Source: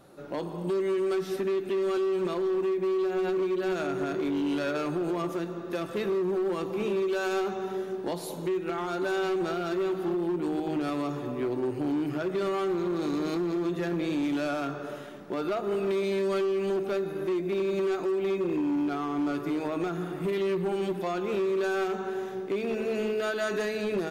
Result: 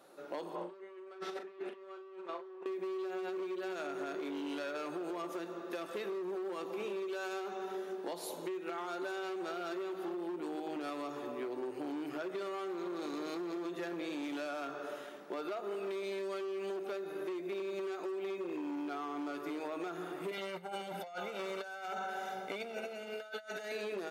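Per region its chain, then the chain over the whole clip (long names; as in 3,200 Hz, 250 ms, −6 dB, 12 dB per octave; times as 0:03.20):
0:00.55–0:02.66: compressor whose output falls as the input rises −34 dBFS, ratio −0.5 + resonant band-pass 950 Hz, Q 0.56 + double-tracking delay 40 ms −8.5 dB
0:20.31–0:23.72: comb filter 1.4 ms, depth 81% + compressor whose output falls as the input rises −34 dBFS, ratio −0.5
whole clip: high-pass filter 380 Hz 12 dB per octave; downward compressor, threshold −33 dBFS; level −3 dB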